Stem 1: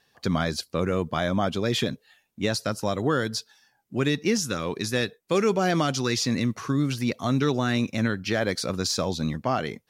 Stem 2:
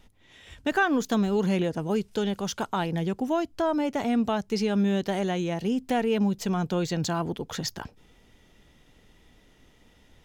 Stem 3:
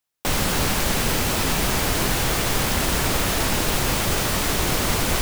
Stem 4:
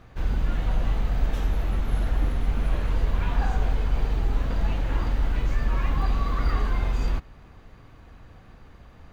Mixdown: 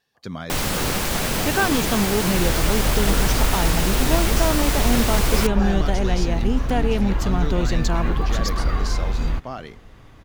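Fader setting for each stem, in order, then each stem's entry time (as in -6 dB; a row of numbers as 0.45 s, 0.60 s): -7.5 dB, +2.0 dB, -1.5 dB, +2.0 dB; 0.00 s, 0.80 s, 0.25 s, 2.20 s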